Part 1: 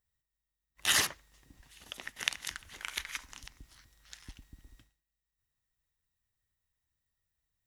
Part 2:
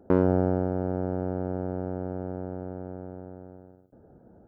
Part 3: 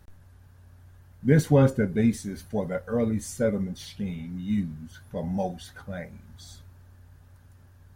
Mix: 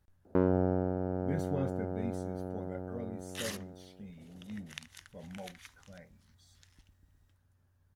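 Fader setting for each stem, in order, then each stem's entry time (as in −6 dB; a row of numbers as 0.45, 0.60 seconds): −13.5, −5.5, −17.0 decibels; 2.50, 0.25, 0.00 seconds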